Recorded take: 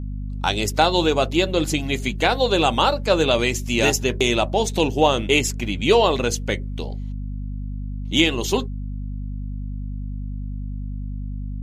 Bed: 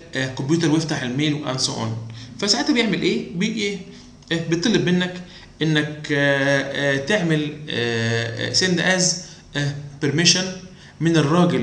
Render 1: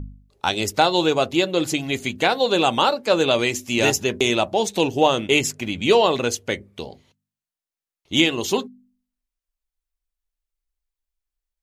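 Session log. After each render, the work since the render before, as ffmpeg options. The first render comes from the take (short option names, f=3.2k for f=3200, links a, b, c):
-af "bandreject=f=50:t=h:w=4,bandreject=f=100:t=h:w=4,bandreject=f=150:t=h:w=4,bandreject=f=200:t=h:w=4,bandreject=f=250:t=h:w=4"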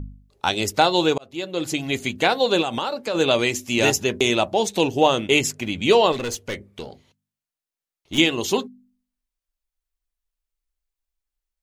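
-filter_complex "[0:a]asplit=3[a][b][c];[a]afade=t=out:st=2.61:d=0.02[d];[b]acompressor=threshold=-21dB:ratio=6:attack=3.2:release=140:knee=1:detection=peak,afade=t=in:st=2.61:d=0.02,afade=t=out:st=3.14:d=0.02[e];[c]afade=t=in:st=3.14:d=0.02[f];[d][e][f]amix=inputs=3:normalize=0,asettb=1/sr,asplit=3[g][h][i];[g]atrim=end=6.124[j];[h]atrim=start=6.12:end=8.18,asetpts=PTS-STARTPTS,afade=t=in:d=0.004:c=qsin,afade=t=out:st=2.056:d=0.004:c=qsin,aeval=exprs='(tanh(12.6*val(0)+0.2)-tanh(0.2))/12.6':c=same[k];[i]atrim=start=8.176[l];[j][k]acrossfade=d=0.004:c1=hsin:c2=qsin[m];[m][l]acrossfade=d=0.004:c1=qsin:c2=hsin,asplit=2[n][o];[n]atrim=end=1.18,asetpts=PTS-STARTPTS,afade=t=out:st=1.176:d=0.004:c=hsin[p];[o]atrim=start=1.18,asetpts=PTS-STARTPTS,afade=t=in:d=0.7[q];[p][q]concat=n=2:v=0:a=1"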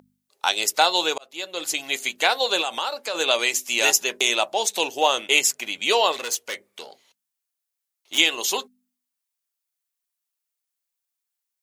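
-af "highpass=650,highshelf=f=5.6k:g=9"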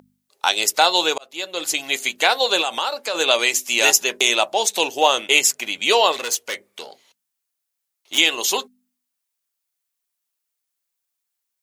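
-af "volume=3.5dB,alimiter=limit=-1dB:level=0:latency=1"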